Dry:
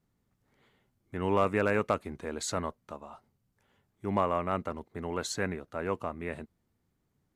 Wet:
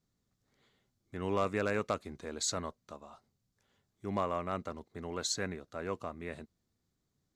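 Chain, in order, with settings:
flat-topped bell 5,200 Hz +8 dB 1.3 octaves
notch filter 890 Hz, Q 12
level −5 dB

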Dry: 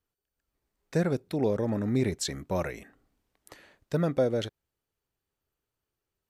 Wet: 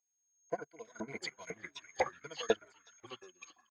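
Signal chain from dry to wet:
source passing by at 0:02.76, 24 m/s, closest 20 metres
noise reduction from a noise print of the clip's start 16 dB
EQ curve with evenly spaced ripples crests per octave 1.8, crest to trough 17 dB
delay with pitch and tempo change per echo 355 ms, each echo −4 semitones, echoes 3, each echo −6 dB
tempo change 1.7×
steady tone 6,500 Hz −45 dBFS
auto-filter band-pass saw up 2 Hz 790–4,600 Hz
echo through a band-pass that steps 369 ms, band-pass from 1,600 Hz, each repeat 0.7 octaves, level −1 dB
expander for the loud parts 2.5 to 1, over −57 dBFS
level +14.5 dB

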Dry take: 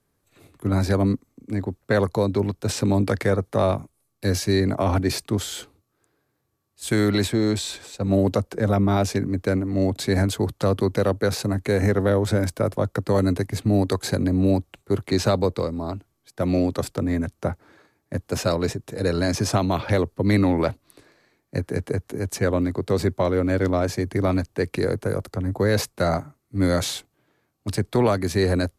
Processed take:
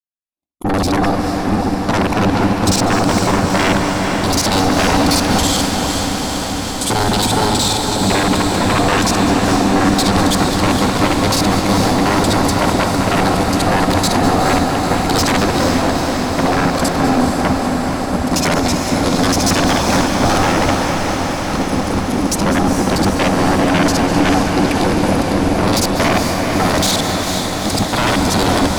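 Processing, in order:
reversed piece by piece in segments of 46 ms
noise gate −44 dBFS, range −57 dB
high-shelf EQ 8,900 Hz −8 dB
phaser with its sweep stopped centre 440 Hz, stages 6
sine wavefolder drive 16 dB, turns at −10 dBFS
feedback delay with all-pass diffusion 459 ms, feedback 78%, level −5 dB
on a send at −7.5 dB: convolution reverb RT60 0.55 s, pre-delay 191 ms
on the sum: level −2.5 dB

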